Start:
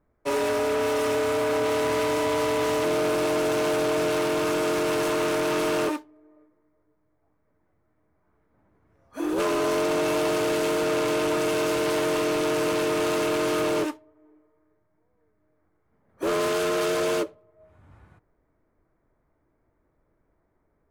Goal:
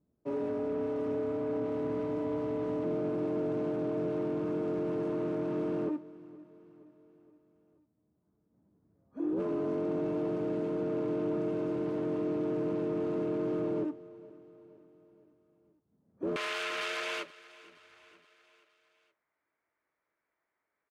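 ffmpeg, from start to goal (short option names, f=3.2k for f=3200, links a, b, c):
-af "asetnsamples=n=441:p=0,asendcmd='16.36 bandpass f 2400',bandpass=f=200:t=q:w=1.4:csg=0,aecho=1:1:471|942|1413|1884:0.0944|0.0519|0.0286|0.0157"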